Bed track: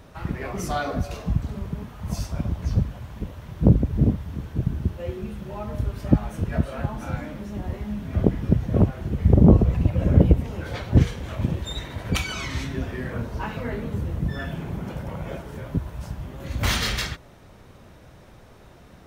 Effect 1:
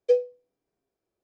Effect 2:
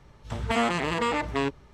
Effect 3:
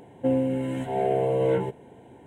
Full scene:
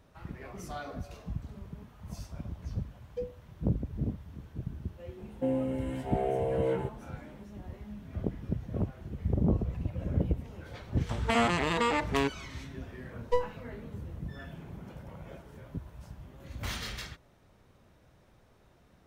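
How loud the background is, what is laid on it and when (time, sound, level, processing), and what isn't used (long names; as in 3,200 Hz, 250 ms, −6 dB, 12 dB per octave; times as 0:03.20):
bed track −13.5 dB
0:03.08: mix in 1 −16 dB
0:05.18: mix in 3 −6.5 dB
0:10.79: mix in 2 −1.5 dB
0:13.23: mix in 1 −2.5 dB + half-wave rectification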